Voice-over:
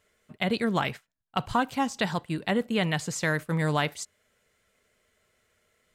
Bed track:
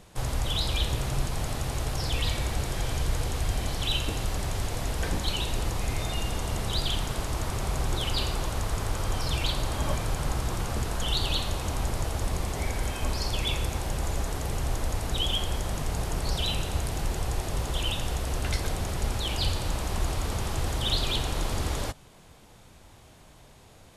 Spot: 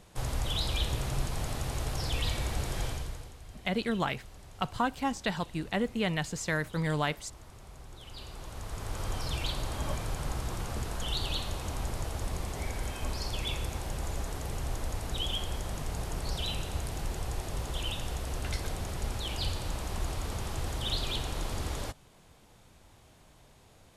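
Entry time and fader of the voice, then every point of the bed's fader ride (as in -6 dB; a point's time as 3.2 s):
3.25 s, -4.0 dB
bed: 2.85 s -3.5 dB
3.37 s -20.5 dB
7.94 s -20.5 dB
9.03 s -5.5 dB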